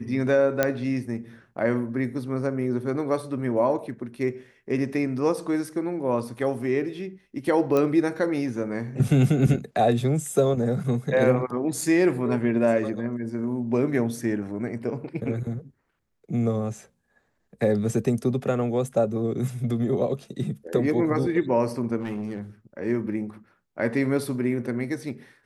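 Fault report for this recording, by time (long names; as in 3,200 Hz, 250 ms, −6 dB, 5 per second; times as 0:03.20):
0:00.63: click −7 dBFS
0:07.77: click −12 dBFS
0:11.81: drop-out 2.5 ms
0:21.97–0:22.39: clipping −26 dBFS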